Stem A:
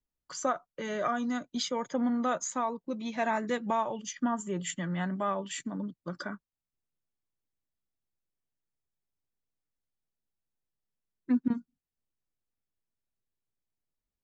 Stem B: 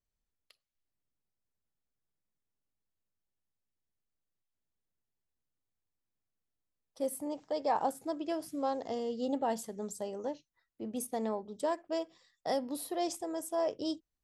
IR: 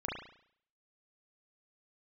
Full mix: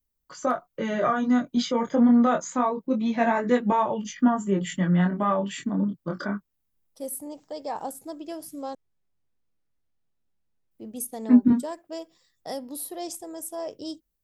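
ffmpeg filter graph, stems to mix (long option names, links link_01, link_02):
-filter_complex "[0:a]highshelf=frequency=6100:gain=-11.5,dynaudnorm=framelen=190:gausssize=5:maxgain=6dB,flanger=delay=19.5:depth=6:speed=0.25,volume=2.5dB[link_01];[1:a]aemphasis=mode=production:type=50fm,volume=-3.5dB,asplit=3[link_02][link_03][link_04];[link_02]atrim=end=8.75,asetpts=PTS-STARTPTS,afade=type=out:start_time=8.746:duration=0.004:curve=hsin[link_05];[link_03]atrim=start=8.75:end=10.71,asetpts=PTS-STARTPTS,volume=0[link_06];[link_04]atrim=start=10.71,asetpts=PTS-STARTPTS,afade=type=in:duration=0.004:curve=hsin[link_07];[link_05][link_06][link_07]concat=n=3:v=0:a=1[link_08];[link_01][link_08]amix=inputs=2:normalize=0,lowshelf=frequency=440:gain=5.5"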